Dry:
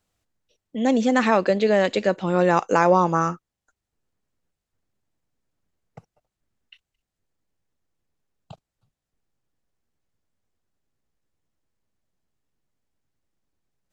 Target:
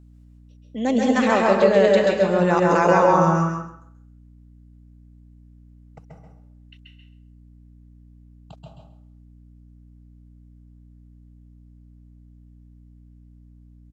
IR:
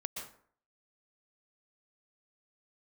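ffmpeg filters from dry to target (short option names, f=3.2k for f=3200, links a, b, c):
-filter_complex "[0:a]aecho=1:1:133|266|399:0.631|0.101|0.0162[a];[1:a]atrim=start_sample=2205,asetrate=40131,aresample=44100[b];[a][b]afir=irnorm=-1:irlink=0,aeval=exprs='val(0)+0.00447*(sin(2*PI*60*n/s)+sin(2*PI*2*60*n/s)/2+sin(2*PI*3*60*n/s)/3+sin(2*PI*4*60*n/s)/4+sin(2*PI*5*60*n/s)/5)':c=same"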